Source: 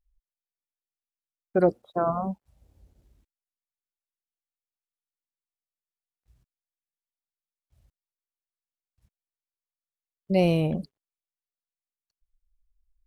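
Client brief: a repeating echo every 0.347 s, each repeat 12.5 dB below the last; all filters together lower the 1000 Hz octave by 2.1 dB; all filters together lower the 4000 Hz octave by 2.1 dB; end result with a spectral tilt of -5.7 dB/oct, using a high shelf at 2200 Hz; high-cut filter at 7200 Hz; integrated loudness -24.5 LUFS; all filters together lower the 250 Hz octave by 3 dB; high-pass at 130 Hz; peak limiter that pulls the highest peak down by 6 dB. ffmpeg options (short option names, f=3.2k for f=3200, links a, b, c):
-af "highpass=130,lowpass=7.2k,equalizer=f=250:t=o:g=-4,equalizer=f=1k:t=o:g=-3.5,highshelf=f=2.2k:g=4,equalizer=f=4k:t=o:g=-7,alimiter=limit=-16dB:level=0:latency=1,aecho=1:1:347|694|1041:0.237|0.0569|0.0137,volume=6dB"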